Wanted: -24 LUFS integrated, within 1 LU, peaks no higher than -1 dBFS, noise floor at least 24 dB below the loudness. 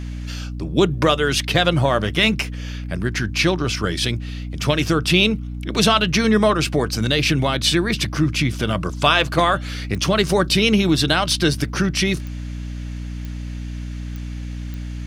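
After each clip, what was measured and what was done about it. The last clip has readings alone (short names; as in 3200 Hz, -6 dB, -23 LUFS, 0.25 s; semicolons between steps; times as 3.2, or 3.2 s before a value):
clicks 5; hum 60 Hz; harmonics up to 300 Hz; hum level -26 dBFS; loudness -19.0 LUFS; peak -2.0 dBFS; loudness target -24.0 LUFS
-> de-click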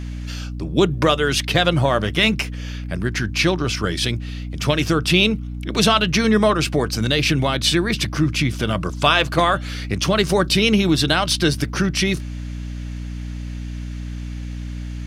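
clicks 0; hum 60 Hz; harmonics up to 300 Hz; hum level -26 dBFS
-> de-hum 60 Hz, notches 5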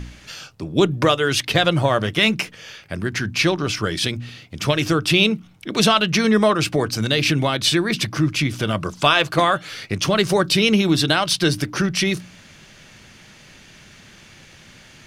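hum none; loudness -19.0 LUFS; peak -2.5 dBFS; loudness target -24.0 LUFS
-> gain -5 dB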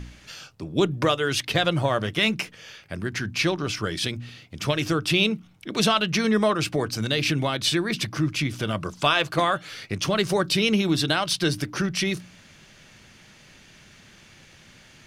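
loudness -24.0 LUFS; peak -7.5 dBFS; noise floor -52 dBFS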